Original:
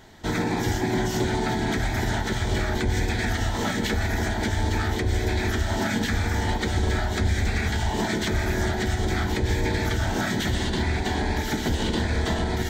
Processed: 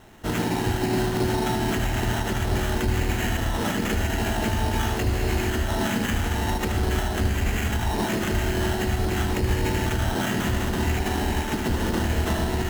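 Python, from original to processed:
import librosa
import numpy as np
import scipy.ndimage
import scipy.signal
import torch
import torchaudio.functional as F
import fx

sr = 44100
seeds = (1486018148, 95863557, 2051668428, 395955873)

y = scipy.signal.sosfilt(scipy.signal.cheby1(3, 1.0, 5900.0, 'lowpass', fs=sr, output='sos'), x)
y = fx.sample_hold(y, sr, seeds[0], rate_hz=4700.0, jitter_pct=0)
y = fx.doubler(y, sr, ms=18.0, db=-6, at=(4.17, 5.41))
y = y + 10.0 ** (-8.5 / 20.0) * np.pad(y, (int(76 * sr / 1000.0), 0))[:len(y)]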